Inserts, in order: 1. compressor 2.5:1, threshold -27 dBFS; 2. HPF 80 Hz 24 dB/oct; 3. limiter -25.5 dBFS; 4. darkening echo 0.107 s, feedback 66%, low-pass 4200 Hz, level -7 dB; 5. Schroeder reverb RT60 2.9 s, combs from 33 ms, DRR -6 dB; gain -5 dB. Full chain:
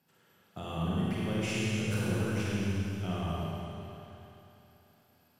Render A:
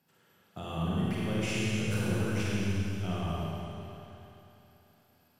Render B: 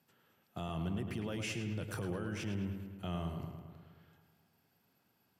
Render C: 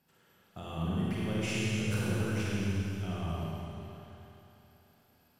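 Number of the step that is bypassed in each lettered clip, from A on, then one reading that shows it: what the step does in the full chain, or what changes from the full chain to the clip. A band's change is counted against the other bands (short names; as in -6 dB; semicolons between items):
1, mean gain reduction 4.5 dB; 5, echo-to-direct 7.0 dB to -5.5 dB; 2, 1 kHz band -2.0 dB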